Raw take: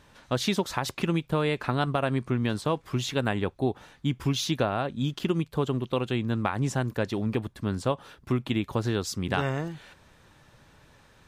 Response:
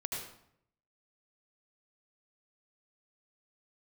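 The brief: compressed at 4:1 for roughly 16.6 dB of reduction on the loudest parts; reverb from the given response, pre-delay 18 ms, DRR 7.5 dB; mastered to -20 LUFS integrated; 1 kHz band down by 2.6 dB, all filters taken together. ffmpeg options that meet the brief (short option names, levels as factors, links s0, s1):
-filter_complex "[0:a]equalizer=f=1000:t=o:g=-3.5,acompressor=threshold=0.00708:ratio=4,asplit=2[s0][s1];[1:a]atrim=start_sample=2205,adelay=18[s2];[s1][s2]afir=irnorm=-1:irlink=0,volume=0.335[s3];[s0][s3]amix=inputs=2:normalize=0,volume=15.8"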